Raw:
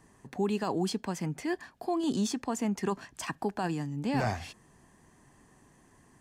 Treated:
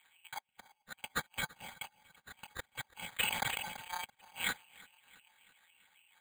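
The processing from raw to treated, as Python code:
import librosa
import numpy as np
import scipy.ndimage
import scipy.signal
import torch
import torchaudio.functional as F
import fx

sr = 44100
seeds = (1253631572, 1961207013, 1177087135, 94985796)

y = fx.bit_reversed(x, sr, seeds[0], block=256)
y = fx.env_lowpass(y, sr, base_hz=850.0, full_db=-29.5)
y = fx.tilt_eq(y, sr, slope=4.0)
y = fx.over_compress(y, sr, threshold_db=-33.0, ratio=-0.5)
y = fx.wah_lfo(y, sr, hz=3.6, low_hz=760.0, high_hz=2000.0, q=3.4)
y = fx.echo_feedback(y, sr, ms=334, feedback_pct=56, wet_db=-22)
y = fx.freq_invert(y, sr, carrier_hz=3600)
y = np.repeat(y[::8], 8)[:len(y)]
y = fx.sustainer(y, sr, db_per_s=41.0, at=(3.15, 4.06))
y = F.gain(torch.from_numpy(y), 10.0).numpy()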